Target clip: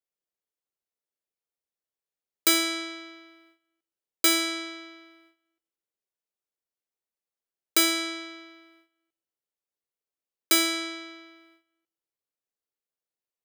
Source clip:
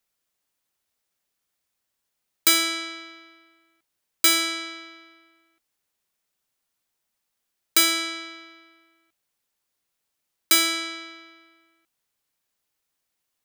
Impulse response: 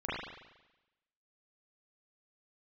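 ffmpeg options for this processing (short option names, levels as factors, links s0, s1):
-filter_complex "[0:a]equalizer=f=450:t=o:w=1.2:g=10,agate=range=0.2:threshold=0.00158:ratio=16:detection=peak,asplit=2[s0][s1];[1:a]atrim=start_sample=2205[s2];[s1][s2]afir=irnorm=-1:irlink=0,volume=0.0562[s3];[s0][s3]amix=inputs=2:normalize=0,volume=0.631"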